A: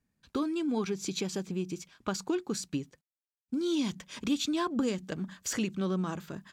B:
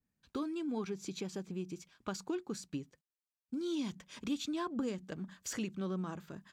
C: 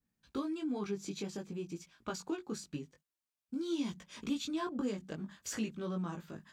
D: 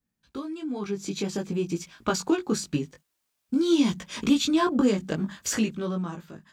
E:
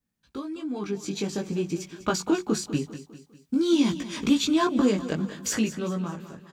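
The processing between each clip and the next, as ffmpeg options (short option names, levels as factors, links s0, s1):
-af "adynamicequalizer=threshold=0.00355:dfrequency=2200:dqfactor=0.7:tfrequency=2200:tqfactor=0.7:attack=5:release=100:ratio=0.375:range=2.5:mode=cutabove:tftype=highshelf,volume=0.473"
-af "flanger=delay=17.5:depth=2.5:speed=0.5,volume=1.5"
-af "dynaudnorm=f=210:g=11:m=4.22,volume=1.19"
-af "aecho=1:1:200|400|600|800:0.2|0.0938|0.0441|0.0207"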